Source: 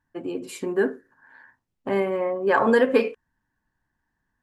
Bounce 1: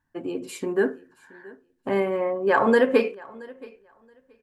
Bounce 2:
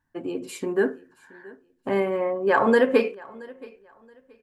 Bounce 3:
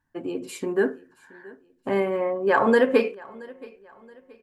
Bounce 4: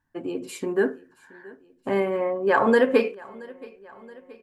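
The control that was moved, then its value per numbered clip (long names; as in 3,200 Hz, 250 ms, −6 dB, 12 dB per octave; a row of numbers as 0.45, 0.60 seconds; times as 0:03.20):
repeating echo, feedback: 17, 25, 38, 60%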